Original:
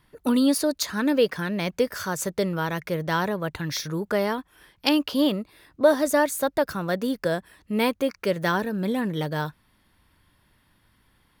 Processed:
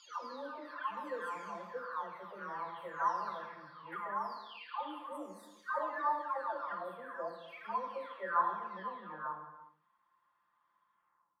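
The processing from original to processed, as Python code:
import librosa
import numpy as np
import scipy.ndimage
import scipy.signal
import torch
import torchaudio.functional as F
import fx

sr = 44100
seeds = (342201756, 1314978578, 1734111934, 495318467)

y = fx.spec_delay(x, sr, highs='early', ms=944)
y = fx.bandpass_q(y, sr, hz=1100.0, q=6.5)
y = fx.rev_gated(y, sr, seeds[0], gate_ms=420, shape='falling', drr_db=4.5)
y = F.gain(torch.from_numpy(y), 3.0).numpy()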